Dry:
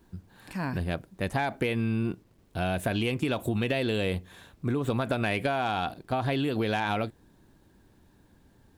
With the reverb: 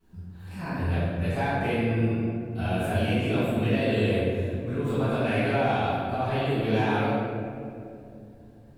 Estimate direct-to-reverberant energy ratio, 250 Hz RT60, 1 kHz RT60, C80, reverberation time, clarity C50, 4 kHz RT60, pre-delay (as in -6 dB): -15.0 dB, 3.6 s, 2.2 s, -1.5 dB, 2.7 s, -4.0 dB, 1.2 s, 6 ms